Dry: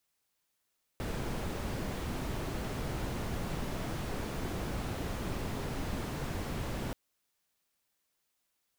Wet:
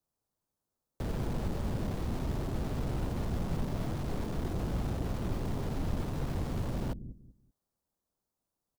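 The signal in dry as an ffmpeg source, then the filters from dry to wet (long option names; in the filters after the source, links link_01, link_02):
-f lavfi -i "anoisesrc=color=brown:amplitude=0.0785:duration=5.93:sample_rate=44100:seed=1"
-filter_complex "[0:a]bass=frequency=250:gain=4,treble=frequency=4000:gain=-10,acrossover=split=340|1200|4500[link_01][link_02][link_03][link_04];[link_01]aecho=1:1:192|384|576:0.398|0.0995|0.0249[link_05];[link_03]acrusher=bits=5:dc=4:mix=0:aa=0.000001[link_06];[link_05][link_02][link_06][link_04]amix=inputs=4:normalize=0"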